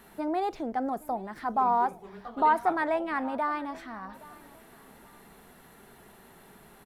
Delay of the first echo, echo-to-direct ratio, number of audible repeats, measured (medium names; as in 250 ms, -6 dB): 819 ms, -20.5 dB, 2